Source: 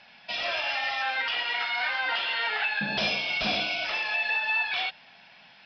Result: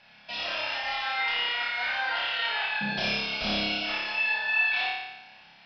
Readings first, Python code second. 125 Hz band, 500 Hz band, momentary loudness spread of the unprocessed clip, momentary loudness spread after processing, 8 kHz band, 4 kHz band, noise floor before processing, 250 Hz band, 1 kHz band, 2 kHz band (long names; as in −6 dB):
+2.0 dB, −1.5 dB, 3 LU, 7 LU, can't be measured, 0.0 dB, −54 dBFS, +3.0 dB, −1.0 dB, −0.5 dB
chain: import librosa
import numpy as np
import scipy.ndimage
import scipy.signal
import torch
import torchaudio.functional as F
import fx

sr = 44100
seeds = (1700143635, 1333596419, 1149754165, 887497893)

y = fx.low_shelf(x, sr, hz=87.0, db=7.5)
y = fx.room_flutter(y, sr, wall_m=5.0, rt60_s=0.99)
y = y * librosa.db_to_amplitude(-5.0)